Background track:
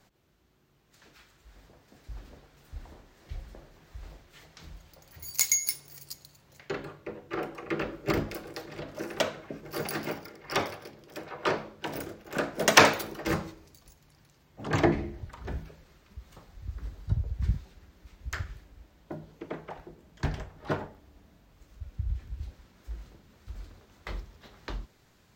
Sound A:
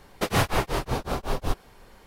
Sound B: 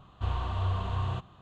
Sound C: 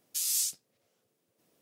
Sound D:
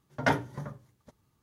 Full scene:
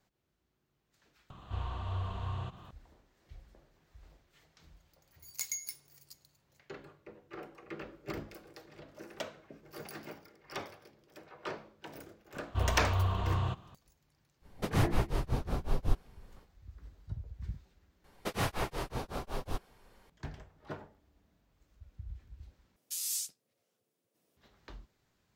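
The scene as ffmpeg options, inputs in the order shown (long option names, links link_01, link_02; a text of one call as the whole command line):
ffmpeg -i bed.wav -i cue0.wav -i cue1.wav -i cue2.wav -filter_complex "[2:a]asplit=2[link_01][link_02];[1:a]asplit=2[link_03][link_04];[0:a]volume=-12.5dB[link_05];[link_01]acompressor=mode=upward:threshold=-44dB:ratio=2.5:attack=85:release=33:knee=2.83:detection=peak[link_06];[link_03]lowshelf=frequency=260:gain=12[link_07];[link_05]asplit=3[link_08][link_09][link_10];[link_08]atrim=end=18.044[link_11];[link_04]atrim=end=2.06,asetpts=PTS-STARTPTS,volume=-10dB[link_12];[link_09]atrim=start=20.096:end=22.764[link_13];[3:a]atrim=end=1.61,asetpts=PTS-STARTPTS,volume=-6dB[link_14];[link_10]atrim=start=24.366[link_15];[link_06]atrim=end=1.41,asetpts=PTS-STARTPTS,volume=-6.5dB,afade=type=in:duration=0.004:curve=hsin,afade=type=out:start_time=1.406:duration=0.004:curve=hsin,adelay=1300[link_16];[link_02]atrim=end=1.41,asetpts=PTS-STARTPTS,volume=-0.5dB,afade=type=in:duration=0.004:curve=hsin,afade=type=out:start_time=1.406:duration=0.004:curve=hsin,adelay=12340[link_17];[link_07]atrim=end=2.06,asetpts=PTS-STARTPTS,volume=-12.5dB,afade=type=in:duration=0.05,afade=type=out:start_time=2.01:duration=0.05,adelay=14410[link_18];[link_11][link_12]acrossfade=duration=0.004:curve1=hsin:curve2=hsin[link_19];[link_19][link_13]acrossfade=duration=0.004:curve1=hsin:curve2=hsin[link_20];[link_20][link_14]acrossfade=duration=0.004:curve1=hsin:curve2=hsin[link_21];[link_21][link_15]acrossfade=duration=0.004:curve1=hsin:curve2=hsin[link_22];[link_22][link_16][link_17][link_18]amix=inputs=4:normalize=0" out.wav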